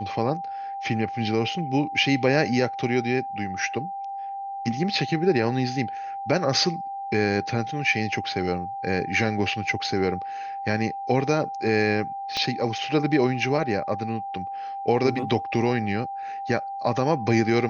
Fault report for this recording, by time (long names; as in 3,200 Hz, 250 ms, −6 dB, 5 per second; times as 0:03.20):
whistle 790 Hz −30 dBFS
0:12.37: click −14 dBFS